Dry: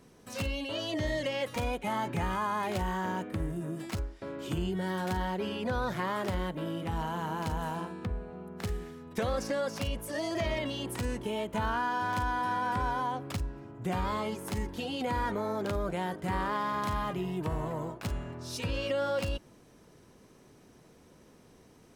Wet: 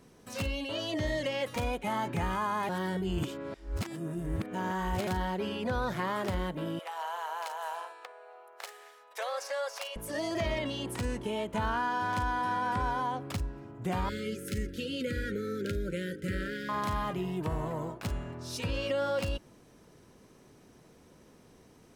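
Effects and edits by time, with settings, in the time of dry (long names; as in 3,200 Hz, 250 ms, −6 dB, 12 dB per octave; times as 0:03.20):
0:02.69–0:05.07: reverse
0:06.79–0:09.96: Butterworth high-pass 550 Hz
0:10.54–0:13.29: parametric band 15,000 Hz −14 dB 0.22 octaves
0:14.09–0:16.69: linear-phase brick-wall band-stop 580–1,300 Hz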